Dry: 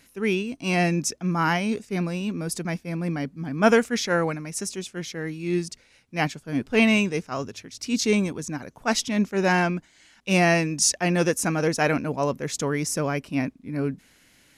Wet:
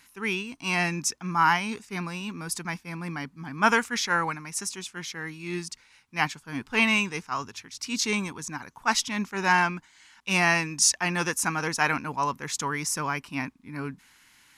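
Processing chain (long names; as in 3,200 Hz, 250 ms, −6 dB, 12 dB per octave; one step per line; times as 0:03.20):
low shelf with overshoot 750 Hz −7 dB, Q 3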